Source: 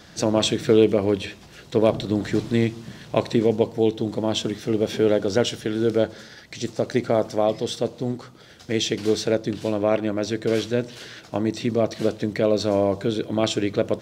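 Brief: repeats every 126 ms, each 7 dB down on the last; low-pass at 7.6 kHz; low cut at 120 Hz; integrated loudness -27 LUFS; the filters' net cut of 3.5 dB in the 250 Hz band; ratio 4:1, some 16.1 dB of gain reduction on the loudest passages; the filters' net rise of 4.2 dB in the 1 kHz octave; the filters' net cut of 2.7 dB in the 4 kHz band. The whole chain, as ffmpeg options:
-af "highpass=120,lowpass=7600,equalizer=f=250:t=o:g=-5,equalizer=f=1000:t=o:g=6.5,equalizer=f=4000:t=o:g=-3.5,acompressor=threshold=0.0224:ratio=4,aecho=1:1:126|252|378|504|630:0.447|0.201|0.0905|0.0407|0.0183,volume=2.66"

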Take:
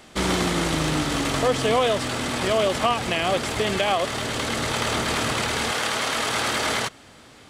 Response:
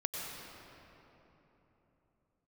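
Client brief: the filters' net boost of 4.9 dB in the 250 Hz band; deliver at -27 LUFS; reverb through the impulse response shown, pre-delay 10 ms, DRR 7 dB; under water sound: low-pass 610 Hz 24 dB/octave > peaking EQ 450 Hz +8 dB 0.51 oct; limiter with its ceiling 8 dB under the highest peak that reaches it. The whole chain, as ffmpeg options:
-filter_complex "[0:a]equalizer=f=250:t=o:g=5,alimiter=limit=0.158:level=0:latency=1,asplit=2[s0][s1];[1:a]atrim=start_sample=2205,adelay=10[s2];[s1][s2]afir=irnorm=-1:irlink=0,volume=0.316[s3];[s0][s3]amix=inputs=2:normalize=0,lowpass=f=610:w=0.5412,lowpass=f=610:w=1.3066,equalizer=f=450:t=o:w=0.51:g=8,volume=0.794"

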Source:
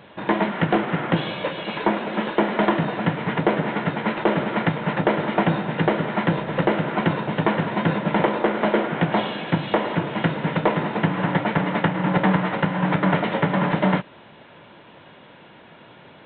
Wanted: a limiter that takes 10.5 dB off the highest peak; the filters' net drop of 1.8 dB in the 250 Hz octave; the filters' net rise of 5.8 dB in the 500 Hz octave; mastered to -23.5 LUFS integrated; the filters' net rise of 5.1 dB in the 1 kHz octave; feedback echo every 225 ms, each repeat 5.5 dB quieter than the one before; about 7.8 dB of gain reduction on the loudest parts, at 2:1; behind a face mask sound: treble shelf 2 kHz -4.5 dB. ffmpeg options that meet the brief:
-af "equalizer=f=250:t=o:g=-5.5,equalizer=f=500:t=o:g=7.5,equalizer=f=1000:t=o:g=5,acompressor=threshold=0.0562:ratio=2,alimiter=limit=0.126:level=0:latency=1,highshelf=f=2000:g=-4.5,aecho=1:1:225|450|675|900|1125|1350|1575:0.531|0.281|0.149|0.079|0.0419|0.0222|0.0118,volume=1.58"

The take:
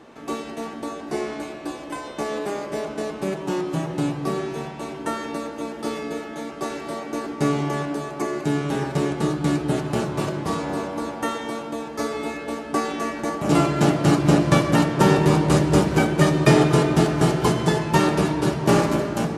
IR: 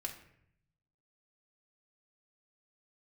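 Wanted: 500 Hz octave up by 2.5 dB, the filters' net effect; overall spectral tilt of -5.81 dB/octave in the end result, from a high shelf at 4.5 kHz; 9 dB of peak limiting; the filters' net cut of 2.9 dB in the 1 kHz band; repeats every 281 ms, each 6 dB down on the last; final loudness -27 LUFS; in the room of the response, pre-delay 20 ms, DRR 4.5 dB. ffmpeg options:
-filter_complex "[0:a]equalizer=f=500:t=o:g=4.5,equalizer=f=1000:t=o:g=-5.5,highshelf=f=4500:g=6.5,alimiter=limit=0.316:level=0:latency=1,aecho=1:1:281|562|843|1124|1405|1686:0.501|0.251|0.125|0.0626|0.0313|0.0157,asplit=2[s0][s1];[1:a]atrim=start_sample=2205,adelay=20[s2];[s1][s2]afir=irnorm=-1:irlink=0,volume=0.668[s3];[s0][s3]amix=inputs=2:normalize=0,volume=0.501"

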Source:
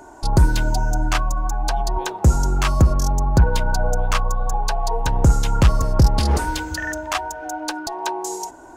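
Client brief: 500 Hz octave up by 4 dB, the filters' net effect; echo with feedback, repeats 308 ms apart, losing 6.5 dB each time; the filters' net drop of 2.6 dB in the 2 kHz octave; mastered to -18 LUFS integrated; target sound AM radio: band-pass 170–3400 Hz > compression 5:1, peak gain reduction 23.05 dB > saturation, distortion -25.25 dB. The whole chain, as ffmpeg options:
-af "highpass=170,lowpass=3400,equalizer=f=500:t=o:g=5.5,equalizer=f=2000:t=o:g=-4,aecho=1:1:308|616|924|1232|1540|1848:0.473|0.222|0.105|0.0491|0.0231|0.0109,acompressor=threshold=0.0112:ratio=5,asoftclip=threshold=0.0473,volume=13.3"

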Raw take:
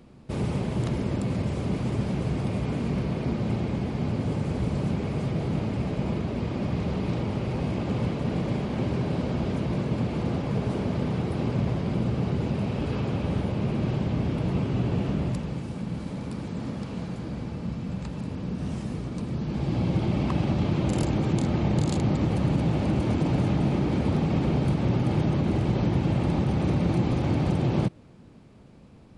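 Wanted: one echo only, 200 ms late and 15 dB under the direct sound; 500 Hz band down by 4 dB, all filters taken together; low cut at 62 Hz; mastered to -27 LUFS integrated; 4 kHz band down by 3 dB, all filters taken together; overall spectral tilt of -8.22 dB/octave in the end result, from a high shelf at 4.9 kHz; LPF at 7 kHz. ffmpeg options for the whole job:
-af "highpass=62,lowpass=7000,equalizer=f=500:t=o:g=-5.5,equalizer=f=4000:t=o:g=-6.5,highshelf=f=4900:g=6.5,aecho=1:1:200:0.178,volume=1.12"

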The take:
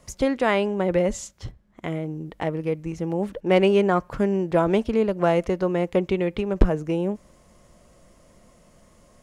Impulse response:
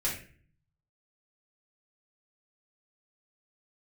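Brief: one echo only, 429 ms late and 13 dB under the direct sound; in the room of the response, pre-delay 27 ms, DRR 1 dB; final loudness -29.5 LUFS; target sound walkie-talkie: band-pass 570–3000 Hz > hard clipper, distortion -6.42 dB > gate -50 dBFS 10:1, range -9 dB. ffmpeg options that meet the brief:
-filter_complex "[0:a]aecho=1:1:429:0.224,asplit=2[s0][s1];[1:a]atrim=start_sample=2205,adelay=27[s2];[s1][s2]afir=irnorm=-1:irlink=0,volume=0.447[s3];[s0][s3]amix=inputs=2:normalize=0,highpass=570,lowpass=3000,asoftclip=type=hard:threshold=0.0596,agate=range=0.355:threshold=0.00316:ratio=10,volume=1.06"

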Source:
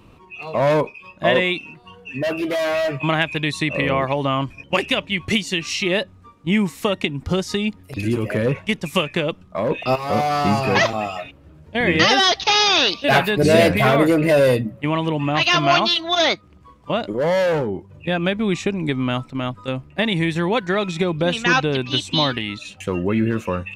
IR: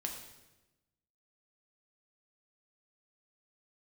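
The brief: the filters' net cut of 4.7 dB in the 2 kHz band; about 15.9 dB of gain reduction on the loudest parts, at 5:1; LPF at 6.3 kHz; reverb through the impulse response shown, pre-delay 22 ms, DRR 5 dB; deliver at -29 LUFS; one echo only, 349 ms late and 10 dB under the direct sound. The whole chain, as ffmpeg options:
-filter_complex "[0:a]lowpass=6300,equalizer=f=2000:t=o:g=-6,acompressor=threshold=0.0398:ratio=5,aecho=1:1:349:0.316,asplit=2[s0][s1];[1:a]atrim=start_sample=2205,adelay=22[s2];[s1][s2]afir=irnorm=-1:irlink=0,volume=0.562[s3];[s0][s3]amix=inputs=2:normalize=0,volume=1.06"

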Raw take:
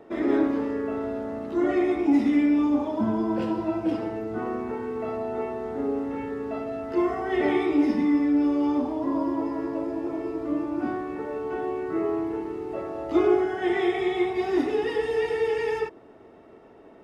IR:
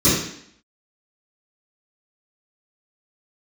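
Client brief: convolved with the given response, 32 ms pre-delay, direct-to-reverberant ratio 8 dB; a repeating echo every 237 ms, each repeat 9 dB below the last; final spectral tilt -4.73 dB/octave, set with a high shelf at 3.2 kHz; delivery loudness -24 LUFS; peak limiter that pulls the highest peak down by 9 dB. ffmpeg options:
-filter_complex "[0:a]highshelf=f=3200:g=-9,alimiter=limit=0.1:level=0:latency=1,aecho=1:1:237|474|711|948:0.355|0.124|0.0435|0.0152,asplit=2[s0][s1];[1:a]atrim=start_sample=2205,adelay=32[s2];[s1][s2]afir=irnorm=-1:irlink=0,volume=0.0376[s3];[s0][s3]amix=inputs=2:normalize=0"

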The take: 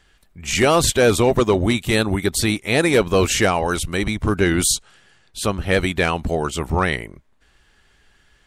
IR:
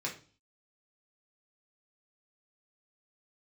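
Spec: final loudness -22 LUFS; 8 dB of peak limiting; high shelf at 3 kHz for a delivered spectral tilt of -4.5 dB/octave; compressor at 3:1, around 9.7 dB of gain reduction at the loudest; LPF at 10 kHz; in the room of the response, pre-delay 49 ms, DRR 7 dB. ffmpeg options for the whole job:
-filter_complex "[0:a]lowpass=10000,highshelf=f=3000:g=-5.5,acompressor=threshold=0.0562:ratio=3,alimiter=limit=0.0841:level=0:latency=1,asplit=2[s0][s1];[1:a]atrim=start_sample=2205,adelay=49[s2];[s1][s2]afir=irnorm=-1:irlink=0,volume=0.316[s3];[s0][s3]amix=inputs=2:normalize=0,volume=2.66"

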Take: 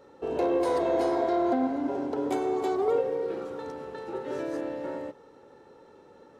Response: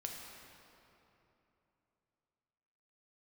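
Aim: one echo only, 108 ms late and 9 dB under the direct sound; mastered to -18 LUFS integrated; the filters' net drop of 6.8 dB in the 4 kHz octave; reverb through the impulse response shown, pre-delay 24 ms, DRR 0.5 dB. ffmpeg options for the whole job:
-filter_complex "[0:a]equalizer=f=4000:t=o:g=-8.5,aecho=1:1:108:0.355,asplit=2[s0][s1];[1:a]atrim=start_sample=2205,adelay=24[s2];[s1][s2]afir=irnorm=-1:irlink=0,volume=1.06[s3];[s0][s3]amix=inputs=2:normalize=0,volume=2.37"

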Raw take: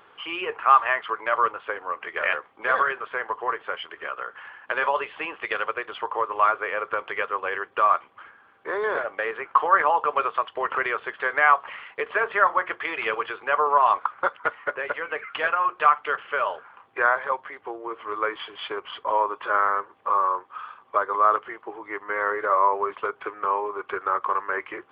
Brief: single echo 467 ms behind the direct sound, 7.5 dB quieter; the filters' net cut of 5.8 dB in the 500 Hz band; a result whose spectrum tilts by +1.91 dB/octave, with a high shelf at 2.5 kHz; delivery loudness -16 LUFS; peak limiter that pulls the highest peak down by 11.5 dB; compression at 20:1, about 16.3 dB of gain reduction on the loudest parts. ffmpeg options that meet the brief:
-af "equalizer=f=500:t=o:g=-7.5,highshelf=f=2500:g=6,acompressor=threshold=0.0398:ratio=20,alimiter=level_in=1.06:limit=0.0631:level=0:latency=1,volume=0.944,aecho=1:1:467:0.422,volume=9.44"

